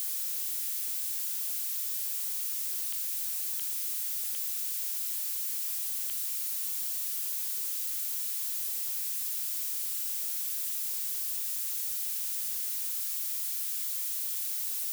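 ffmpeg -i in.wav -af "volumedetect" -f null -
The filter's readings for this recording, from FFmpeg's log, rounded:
mean_volume: -33.3 dB
max_volume: -25.8 dB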